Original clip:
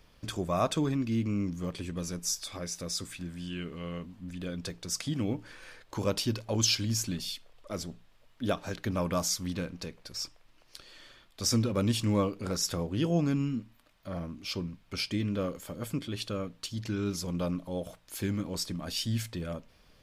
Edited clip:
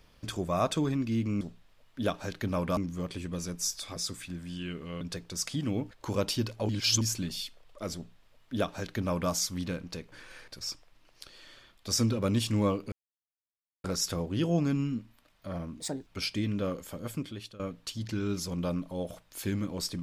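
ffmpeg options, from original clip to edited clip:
ffmpeg -i in.wav -filter_complex "[0:a]asplit=14[link_01][link_02][link_03][link_04][link_05][link_06][link_07][link_08][link_09][link_10][link_11][link_12][link_13][link_14];[link_01]atrim=end=1.412[link_15];[link_02]atrim=start=7.838:end=9.202[link_16];[link_03]atrim=start=1.408:end=2.602[link_17];[link_04]atrim=start=2.868:end=3.922[link_18];[link_05]atrim=start=4.538:end=5.442[link_19];[link_06]atrim=start=5.798:end=6.582[link_20];[link_07]atrim=start=6.578:end=6.902,asetpts=PTS-STARTPTS,areverse[link_21];[link_08]atrim=start=6.898:end=10.012[link_22];[link_09]atrim=start=5.438:end=5.802[link_23];[link_10]atrim=start=10.008:end=12.45,asetpts=PTS-STARTPTS,afade=type=out:start_time=2.438:duration=0.004:curve=hsin,apad=pad_dur=0.92[link_24];[link_11]atrim=start=12.45:end=14.414,asetpts=PTS-STARTPTS,afade=type=in:duration=0.004:curve=hsin[link_25];[link_12]atrim=start=14.41:end=14.83,asetpts=PTS-STARTPTS,asetrate=69678,aresample=44100[link_26];[link_13]atrim=start=14.826:end=16.36,asetpts=PTS-STARTPTS,afade=type=out:start_time=0.854:duration=0.68:curve=qsin:silence=0.1[link_27];[link_14]atrim=start=16.36,asetpts=PTS-STARTPTS,afade=type=in:duration=0.004:curve=hsin:silence=0.1[link_28];[link_15][link_16]acrossfade=duration=0.004:curve1=hsin:curve2=hsin[link_29];[link_29][link_17]acrossfade=duration=0.004:curve1=hsin:curve2=hsin[link_30];[link_30][link_18]acrossfade=duration=0.004:curve1=hsin:curve2=hsin[link_31];[link_31][link_19]acrossfade=duration=0.004:curve1=hsin:curve2=hsin[link_32];[link_32][link_20]acrossfade=duration=0.004:curve1=hsin:curve2=hsin[link_33];[link_33][link_21]acrossfade=duration=0.004:curve1=hsin:curve2=hsin[link_34];[link_34][link_22]acrossfade=duration=0.004:curve1=hsin:curve2=hsin[link_35];[link_35][link_23]acrossfade=duration=0.004:curve1=hsin:curve2=hsin[link_36];[link_24][link_25]concat=n=2:v=0:a=1[link_37];[link_36][link_37]acrossfade=duration=0.004:curve1=hsin:curve2=hsin[link_38];[link_38][link_26]acrossfade=duration=0.004:curve1=hsin:curve2=hsin[link_39];[link_27][link_28]concat=n=2:v=0:a=1[link_40];[link_39][link_40]acrossfade=duration=0.004:curve1=hsin:curve2=hsin" out.wav

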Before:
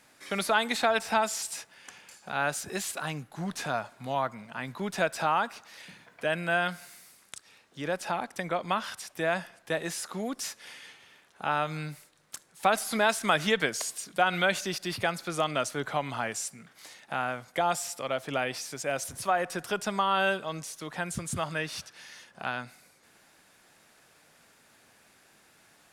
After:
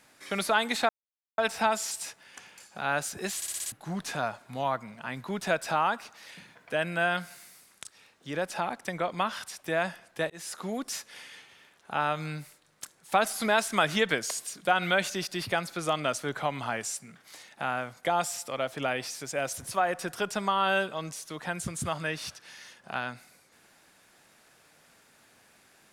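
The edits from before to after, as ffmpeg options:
ffmpeg -i in.wav -filter_complex "[0:a]asplit=9[link_01][link_02][link_03][link_04][link_05][link_06][link_07][link_08][link_09];[link_01]atrim=end=0.89,asetpts=PTS-STARTPTS,afade=type=out:start_time=0.886:duration=0.004:curve=hsin,apad=pad_dur=0.49[link_10];[link_02]atrim=start=0.89:end=2.932,asetpts=PTS-STARTPTS,afade=type=in:duration=0.004:curve=hsin[link_11];[link_03]atrim=start=2.868:end=2.932[link_12];[link_04]atrim=start=2.868:end=2.932[link_13];[link_05]atrim=start=2.868:end=2.932[link_14];[link_06]atrim=start=2.868:end=2.932[link_15];[link_07]atrim=start=2.868:end=2.932[link_16];[link_08]atrim=start=3.228:end=9.81,asetpts=PTS-STARTPTS,afade=type=out:start_time=6.578:duration=0.004:curve=hsin[link_17];[link_09]atrim=start=9.81,asetpts=PTS-STARTPTS,afade=type=in:duration=0.35:curve=qsin[link_18];[link_10][link_11]concat=n=2:v=0:a=1[link_19];[link_19][link_12]acrossfade=duration=0.004:curve1=hsin:curve2=hsin[link_20];[link_20][link_13]acrossfade=duration=0.004:curve1=hsin:curve2=hsin[link_21];[link_21][link_14]acrossfade=duration=0.004:curve1=hsin:curve2=hsin[link_22];[link_22][link_15]acrossfade=duration=0.004:curve1=hsin:curve2=hsin[link_23];[link_23][link_16]acrossfade=duration=0.004:curve1=hsin:curve2=hsin[link_24];[link_17][link_18]concat=n=2:v=0:a=1[link_25];[link_24][link_25]acrossfade=duration=0.004:curve1=hsin:curve2=hsin" out.wav

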